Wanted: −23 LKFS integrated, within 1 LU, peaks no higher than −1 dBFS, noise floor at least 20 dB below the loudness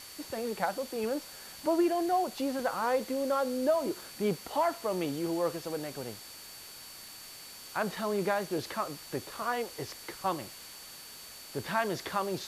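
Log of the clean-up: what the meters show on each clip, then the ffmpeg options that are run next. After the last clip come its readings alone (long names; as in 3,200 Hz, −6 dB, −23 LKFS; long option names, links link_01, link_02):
interfering tone 4,500 Hz; level of the tone −51 dBFS; background noise floor −48 dBFS; target noise floor −53 dBFS; integrated loudness −32.5 LKFS; sample peak −16.5 dBFS; target loudness −23.0 LKFS
→ -af "bandreject=frequency=4500:width=30"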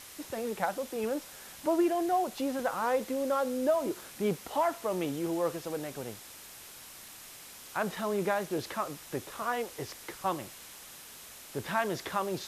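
interfering tone none found; background noise floor −49 dBFS; target noise floor −53 dBFS
→ -af "afftdn=noise_reduction=6:noise_floor=-49"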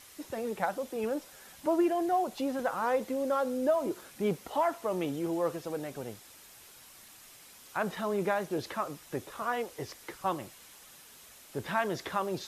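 background noise floor −54 dBFS; integrated loudness −33.0 LKFS; sample peak −16.5 dBFS; target loudness −23.0 LKFS
→ -af "volume=10dB"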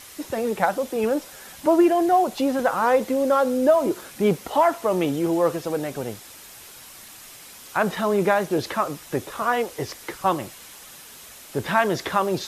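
integrated loudness −23.0 LKFS; sample peak −6.5 dBFS; background noise floor −44 dBFS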